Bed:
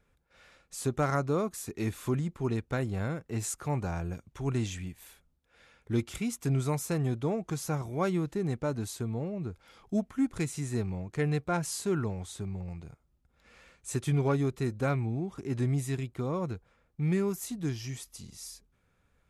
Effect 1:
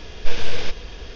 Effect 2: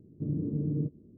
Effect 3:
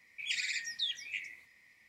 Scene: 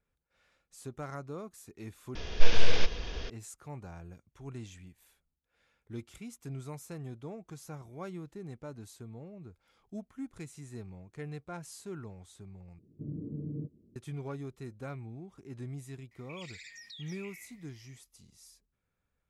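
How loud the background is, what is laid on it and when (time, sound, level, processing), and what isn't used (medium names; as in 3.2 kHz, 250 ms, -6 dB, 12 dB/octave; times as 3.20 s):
bed -12.5 dB
2.15 s: replace with 1 -2 dB
12.79 s: replace with 2 -8 dB
16.11 s: add 3 -4 dB + compression, threshold -42 dBFS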